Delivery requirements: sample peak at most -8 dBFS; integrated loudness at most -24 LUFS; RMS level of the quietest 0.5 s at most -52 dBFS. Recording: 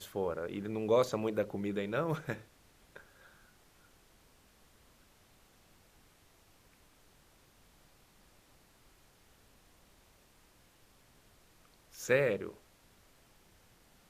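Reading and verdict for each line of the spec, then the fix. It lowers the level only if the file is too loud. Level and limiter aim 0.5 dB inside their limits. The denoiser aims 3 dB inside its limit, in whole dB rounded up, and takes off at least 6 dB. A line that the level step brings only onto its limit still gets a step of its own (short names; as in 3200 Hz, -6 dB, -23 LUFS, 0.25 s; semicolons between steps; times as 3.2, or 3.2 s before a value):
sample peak -15.0 dBFS: OK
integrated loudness -34.0 LUFS: OK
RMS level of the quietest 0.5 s -65 dBFS: OK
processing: none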